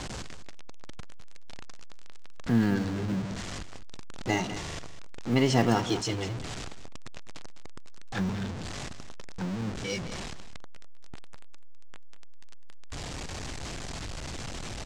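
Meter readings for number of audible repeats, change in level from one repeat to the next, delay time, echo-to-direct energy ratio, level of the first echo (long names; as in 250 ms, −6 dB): 1, repeats not evenly spaced, 204 ms, −13.0 dB, −13.0 dB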